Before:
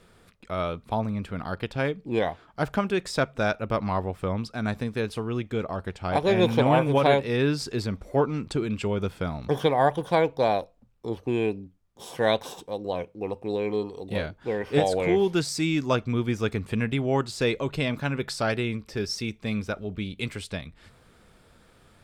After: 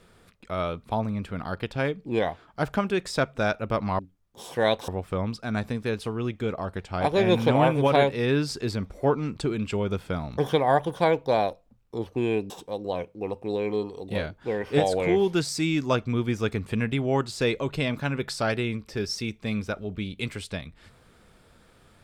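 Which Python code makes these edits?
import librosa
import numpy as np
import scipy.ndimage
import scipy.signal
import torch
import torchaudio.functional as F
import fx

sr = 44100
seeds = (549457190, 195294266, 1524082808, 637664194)

y = fx.edit(x, sr, fx.move(start_s=11.61, length_s=0.89, to_s=3.99), tone=tone)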